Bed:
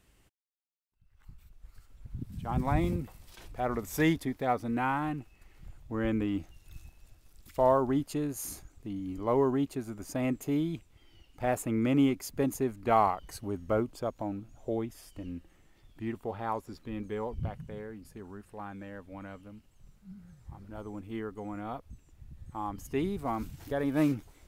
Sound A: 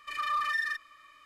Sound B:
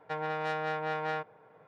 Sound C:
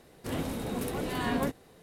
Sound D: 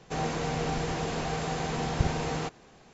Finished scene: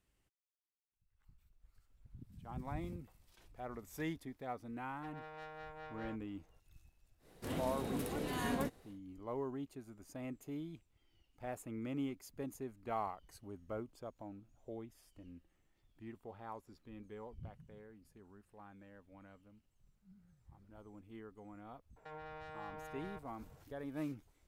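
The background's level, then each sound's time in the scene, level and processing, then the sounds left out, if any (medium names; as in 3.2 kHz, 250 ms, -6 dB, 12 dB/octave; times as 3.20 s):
bed -14.5 dB
4.93 s: add B -17 dB
7.18 s: add C -7 dB, fades 0.10 s
21.96 s: add B -8 dB + peak limiter -33.5 dBFS
not used: A, D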